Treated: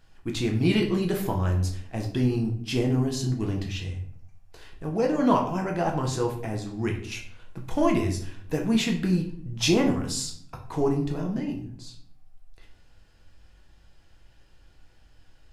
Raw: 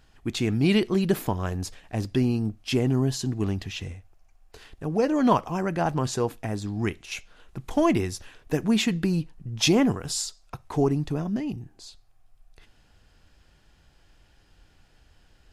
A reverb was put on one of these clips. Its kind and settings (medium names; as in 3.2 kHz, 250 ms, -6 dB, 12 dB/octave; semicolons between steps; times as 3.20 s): simulated room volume 83 m³, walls mixed, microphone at 0.68 m; trim -3.5 dB